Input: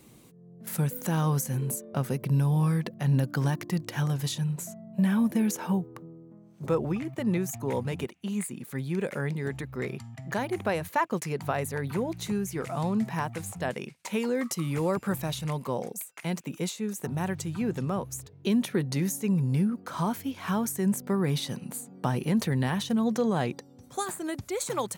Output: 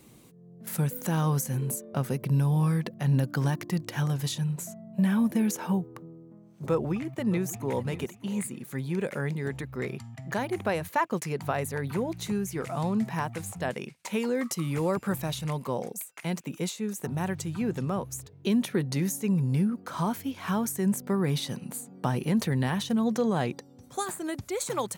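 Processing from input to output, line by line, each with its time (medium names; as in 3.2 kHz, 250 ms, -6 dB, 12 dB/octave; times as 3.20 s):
6.71–7.87 s: echo throw 600 ms, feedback 35%, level -16.5 dB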